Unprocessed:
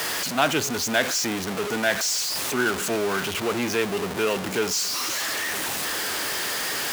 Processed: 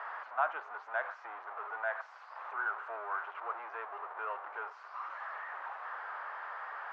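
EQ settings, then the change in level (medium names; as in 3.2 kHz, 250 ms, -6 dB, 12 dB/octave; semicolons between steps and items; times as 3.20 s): inverse Chebyshev high-pass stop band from 170 Hz, stop band 70 dB; Chebyshev low-pass 1.3 kHz, order 3; -5.0 dB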